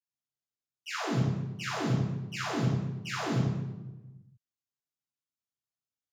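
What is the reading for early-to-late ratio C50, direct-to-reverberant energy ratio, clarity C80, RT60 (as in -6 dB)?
-0.5 dB, -16.0 dB, 2.5 dB, 1.1 s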